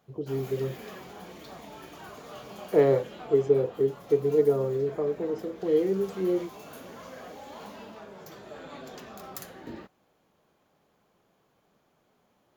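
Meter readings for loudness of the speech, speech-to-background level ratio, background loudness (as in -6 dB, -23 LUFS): -26.5 LUFS, 18.0 dB, -44.5 LUFS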